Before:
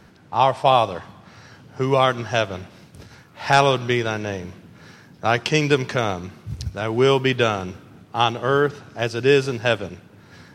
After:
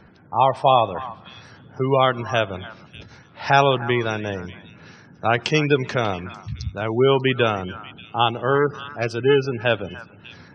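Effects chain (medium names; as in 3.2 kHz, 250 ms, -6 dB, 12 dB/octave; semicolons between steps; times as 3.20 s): 8.55–9.58 s: self-modulated delay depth 0.14 ms; spectral gate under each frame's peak -25 dB strong; repeats whose band climbs or falls 295 ms, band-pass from 1.2 kHz, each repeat 1.4 oct, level -12 dB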